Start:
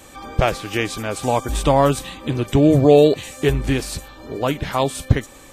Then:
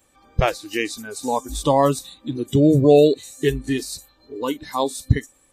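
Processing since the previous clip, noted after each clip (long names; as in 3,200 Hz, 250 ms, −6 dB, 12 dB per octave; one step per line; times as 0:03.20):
noise reduction from a noise print of the clip's start 18 dB
level −1 dB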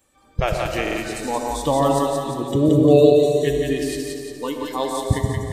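echo with a time of its own for lows and highs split 710 Hz, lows 132 ms, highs 175 ms, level −3 dB
on a send at −5 dB: convolution reverb RT60 2.6 s, pre-delay 20 ms
on the sum: buffer that repeats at 0:00.82, samples 2,048, times 2
level −3 dB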